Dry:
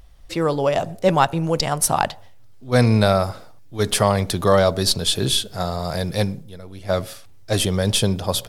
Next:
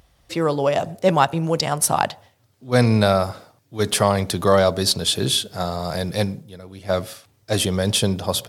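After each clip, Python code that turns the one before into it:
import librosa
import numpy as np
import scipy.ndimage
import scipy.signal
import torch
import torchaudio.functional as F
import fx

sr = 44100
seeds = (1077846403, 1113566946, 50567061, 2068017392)

y = scipy.signal.sosfilt(scipy.signal.butter(2, 90.0, 'highpass', fs=sr, output='sos'), x)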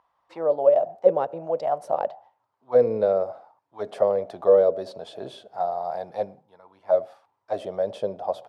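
y = fx.auto_wah(x, sr, base_hz=490.0, top_hz=1000.0, q=6.1, full_db=-13.0, direction='down')
y = F.gain(torch.from_numpy(y), 5.5).numpy()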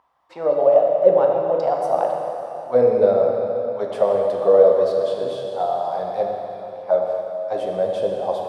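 y = fx.rev_plate(x, sr, seeds[0], rt60_s=3.3, hf_ratio=1.0, predelay_ms=0, drr_db=-0.5)
y = F.gain(torch.from_numpy(y), 2.5).numpy()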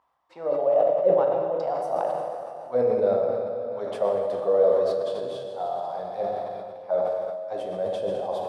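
y = fx.sustainer(x, sr, db_per_s=26.0)
y = F.gain(torch.from_numpy(y), -8.0).numpy()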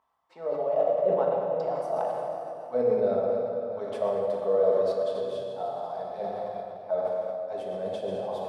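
y = fx.room_shoebox(x, sr, seeds[1], volume_m3=2600.0, walls='mixed', distance_m=1.5)
y = F.gain(torch.from_numpy(y), -4.5).numpy()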